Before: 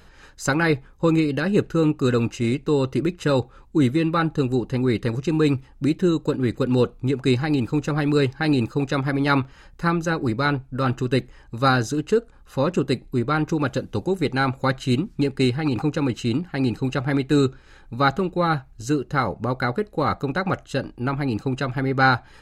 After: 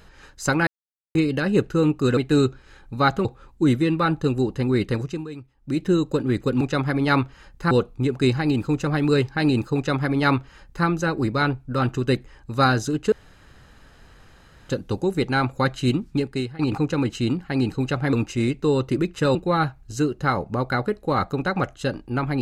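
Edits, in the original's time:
0:00.67–0:01.15: silence
0:02.17–0:03.39: swap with 0:17.17–0:18.25
0:05.11–0:06.00: duck −17 dB, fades 0.30 s
0:08.80–0:09.90: duplicate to 0:06.75
0:12.16–0:13.73: fill with room tone
0:15.14–0:15.63: fade out, to −17 dB

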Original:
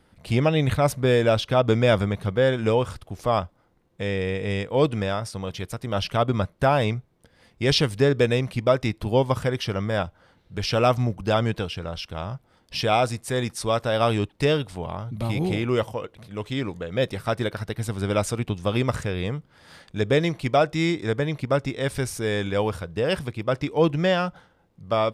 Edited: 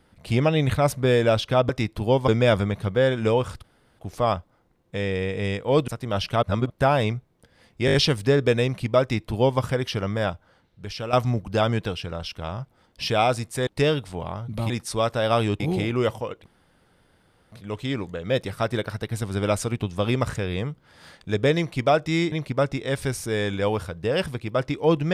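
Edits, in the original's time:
0:03.05: splice in room tone 0.35 s
0:04.94–0:05.69: remove
0:06.24–0:06.51: reverse
0:07.67: stutter 0.02 s, 5 plays
0:08.74–0:09.33: duplicate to 0:01.69
0:09.94–0:10.86: fade out, to −11.5 dB
0:13.40–0:14.30: move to 0:15.33
0:16.19: splice in room tone 1.06 s
0:20.99–0:21.25: remove

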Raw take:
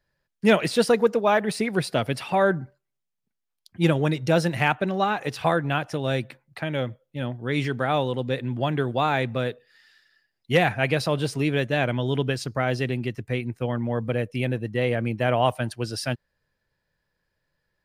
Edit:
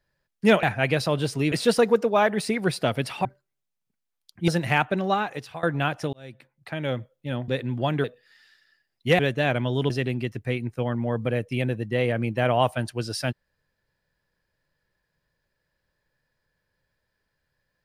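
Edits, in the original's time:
0:02.36–0:02.62: remove
0:03.85–0:04.38: remove
0:05.02–0:05.53: fade out, to −21 dB
0:06.03–0:06.86: fade in
0:07.38–0:08.27: remove
0:08.83–0:09.48: remove
0:10.63–0:11.52: move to 0:00.63
0:12.23–0:12.73: remove

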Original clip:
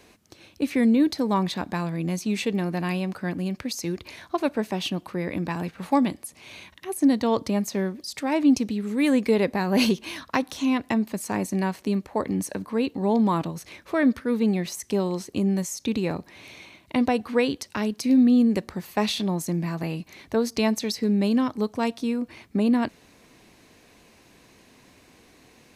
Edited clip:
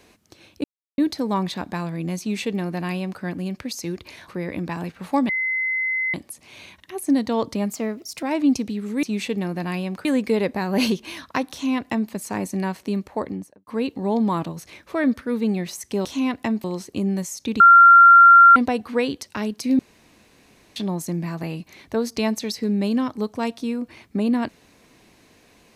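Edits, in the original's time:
0:00.64–0:00.98: silence
0:02.20–0:03.22: duplicate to 0:09.04
0:04.28–0:05.07: remove
0:06.08: insert tone 2,050 Hz −20.5 dBFS 0.85 s
0:07.67–0:08.24: play speed 114%
0:10.51–0:11.10: duplicate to 0:15.04
0:12.11–0:12.66: fade out and dull
0:16.00–0:16.96: beep over 1,380 Hz −6 dBFS
0:18.19–0:19.16: fill with room tone

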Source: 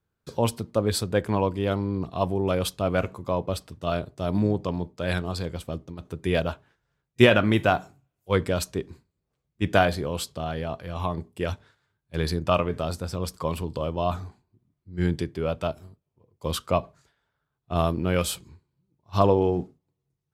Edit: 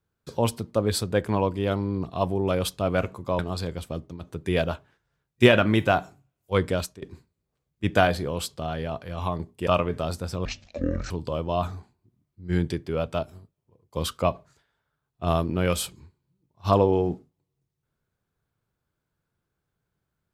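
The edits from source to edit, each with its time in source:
0:03.39–0:05.17: remove
0:08.53–0:08.80: fade out, to −22.5 dB
0:11.45–0:12.47: remove
0:13.25–0:13.59: play speed 52%

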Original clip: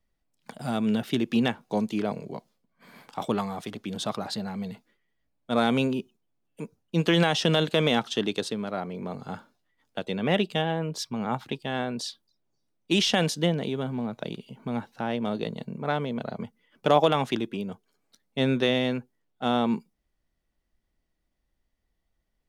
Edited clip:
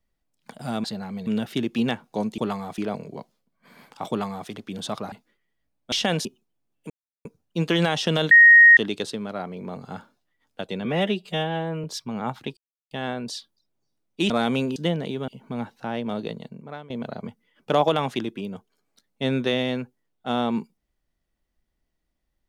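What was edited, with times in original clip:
0:03.26–0:03.66: duplicate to 0:01.95
0:04.29–0:04.72: move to 0:00.84
0:05.52–0:05.98: swap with 0:13.01–0:13.34
0:06.63: splice in silence 0.35 s
0:07.69–0:08.15: beep over 1,870 Hz −7.5 dBFS
0:10.23–0:10.89: time-stretch 1.5×
0:11.62: splice in silence 0.34 s
0:13.86–0:14.44: remove
0:15.39–0:16.06: fade out, to −19 dB

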